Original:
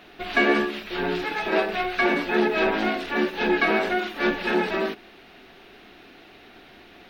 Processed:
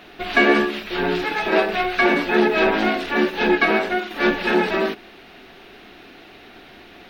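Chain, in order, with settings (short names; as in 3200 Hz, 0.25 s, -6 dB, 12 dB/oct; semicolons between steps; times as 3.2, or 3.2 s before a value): 3.55–4.11 upward expander 1.5:1, over -30 dBFS; gain +4.5 dB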